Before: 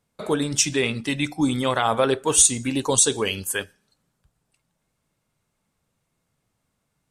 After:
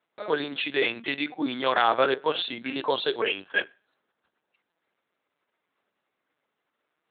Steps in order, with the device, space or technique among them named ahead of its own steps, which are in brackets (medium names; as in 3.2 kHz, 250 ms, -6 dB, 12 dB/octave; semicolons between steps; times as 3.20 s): talking toy (LPC vocoder at 8 kHz pitch kept; high-pass 390 Hz 12 dB/octave; peaking EQ 1.6 kHz +4.5 dB 0.42 oct)